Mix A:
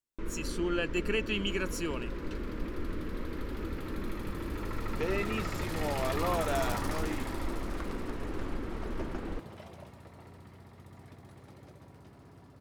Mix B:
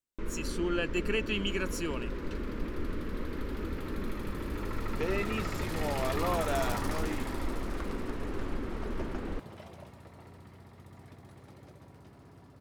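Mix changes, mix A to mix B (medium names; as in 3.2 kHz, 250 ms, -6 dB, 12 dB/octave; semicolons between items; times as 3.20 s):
first sound +4.0 dB; reverb: off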